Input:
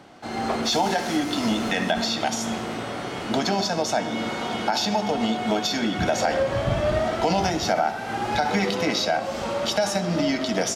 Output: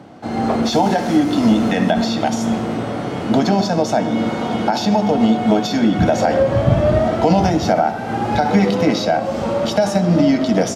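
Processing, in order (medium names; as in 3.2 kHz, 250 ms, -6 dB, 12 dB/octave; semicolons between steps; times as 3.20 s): high-pass 69 Hz; tilt shelf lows +6.5 dB, about 820 Hz; band-stop 380 Hz, Q 12; trim +5.5 dB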